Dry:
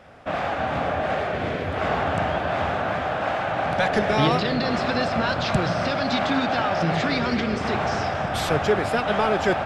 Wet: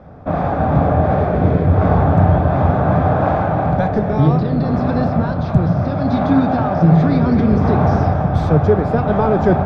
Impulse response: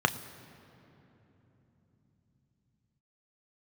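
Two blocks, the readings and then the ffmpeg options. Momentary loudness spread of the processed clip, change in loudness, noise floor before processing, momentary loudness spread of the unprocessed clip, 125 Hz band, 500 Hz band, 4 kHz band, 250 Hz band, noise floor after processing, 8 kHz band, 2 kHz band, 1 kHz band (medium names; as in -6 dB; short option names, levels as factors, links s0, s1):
4 LU, +8.0 dB, -28 dBFS, 4 LU, +15.5 dB, +6.0 dB, under -10 dB, +11.0 dB, -20 dBFS, under -10 dB, -4.0 dB, +4.5 dB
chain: -filter_complex "[0:a]aemphasis=mode=reproduction:type=riaa,asplit=2[s0][s1];[1:a]atrim=start_sample=2205,afade=t=out:st=0.42:d=0.01,atrim=end_sample=18963,lowshelf=f=340:g=8.5[s2];[s1][s2]afir=irnorm=-1:irlink=0,volume=0.188[s3];[s0][s3]amix=inputs=2:normalize=0,dynaudnorm=f=130:g=7:m=3.76,volume=0.891"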